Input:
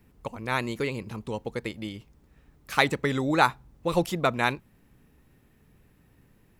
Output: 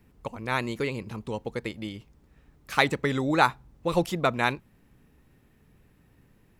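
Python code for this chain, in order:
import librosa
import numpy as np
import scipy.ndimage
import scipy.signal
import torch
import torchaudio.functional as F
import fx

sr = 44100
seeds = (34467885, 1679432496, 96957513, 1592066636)

y = fx.high_shelf(x, sr, hz=9900.0, db=-4.0)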